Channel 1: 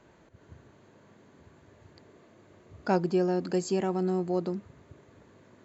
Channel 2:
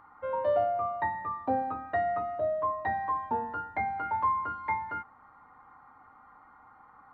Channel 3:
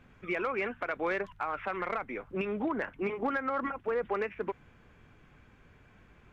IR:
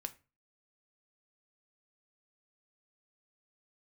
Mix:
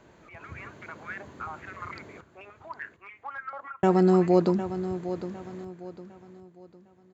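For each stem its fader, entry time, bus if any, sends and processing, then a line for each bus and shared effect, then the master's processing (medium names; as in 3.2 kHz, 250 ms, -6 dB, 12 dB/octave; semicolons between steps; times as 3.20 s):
+3.0 dB, 0.00 s, muted 2.21–3.83 s, no send, echo send -11.5 dB, none
mute
-20.0 dB, 0.00 s, send -5 dB, no echo send, step-sequenced high-pass 6.8 Hz 710–2000 Hz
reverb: on, RT60 0.30 s, pre-delay 3 ms
echo: feedback delay 756 ms, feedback 35%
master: level rider gain up to 5.5 dB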